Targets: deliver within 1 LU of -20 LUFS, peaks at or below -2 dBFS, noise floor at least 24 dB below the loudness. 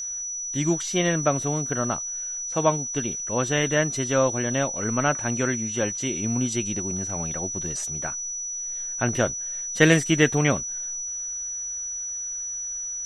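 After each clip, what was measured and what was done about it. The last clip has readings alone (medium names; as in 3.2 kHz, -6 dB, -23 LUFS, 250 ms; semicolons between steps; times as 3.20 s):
steady tone 5.9 kHz; tone level -29 dBFS; loudness -24.5 LUFS; peak level -2.5 dBFS; loudness target -20.0 LUFS
-> band-stop 5.9 kHz, Q 30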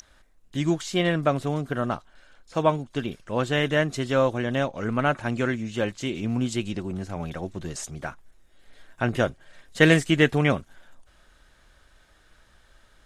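steady tone not found; loudness -25.5 LUFS; peak level -3.0 dBFS; loudness target -20.0 LUFS
-> trim +5.5 dB; peak limiter -2 dBFS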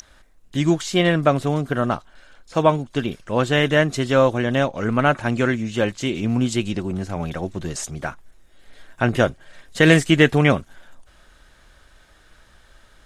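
loudness -20.5 LUFS; peak level -2.0 dBFS; noise floor -53 dBFS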